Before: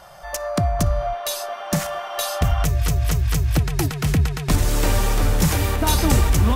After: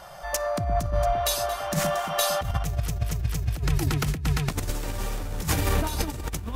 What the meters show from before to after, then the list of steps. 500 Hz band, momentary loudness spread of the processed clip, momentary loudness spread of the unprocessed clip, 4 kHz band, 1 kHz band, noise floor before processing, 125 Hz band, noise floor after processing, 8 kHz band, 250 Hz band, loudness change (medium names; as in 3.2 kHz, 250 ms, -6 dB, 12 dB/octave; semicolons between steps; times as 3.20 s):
-2.5 dB, 7 LU, 8 LU, -4.0 dB, -3.0 dB, -33 dBFS, -7.5 dB, -35 dBFS, -5.0 dB, -8.0 dB, -6.0 dB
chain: echo whose repeats swap between lows and highs 114 ms, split 850 Hz, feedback 71%, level -11.5 dB; compressor with a negative ratio -21 dBFS, ratio -0.5; trim -3.5 dB